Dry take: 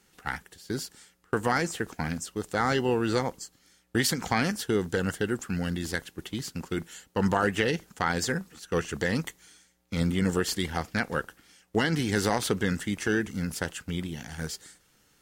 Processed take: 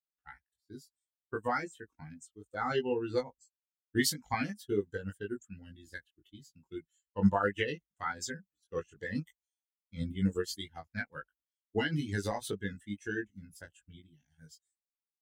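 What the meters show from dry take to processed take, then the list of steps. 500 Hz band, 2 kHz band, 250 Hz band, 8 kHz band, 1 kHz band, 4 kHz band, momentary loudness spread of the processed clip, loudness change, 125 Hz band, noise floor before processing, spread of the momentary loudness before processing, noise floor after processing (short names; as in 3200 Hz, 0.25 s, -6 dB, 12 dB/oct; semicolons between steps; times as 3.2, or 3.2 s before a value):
-6.5 dB, -8.5 dB, -7.0 dB, -9.0 dB, -7.0 dB, -8.0 dB, 20 LU, -6.0 dB, -8.0 dB, -65 dBFS, 10 LU, under -85 dBFS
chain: per-bin expansion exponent 2; doubler 20 ms -2.5 dB; upward expander 1.5:1, over -48 dBFS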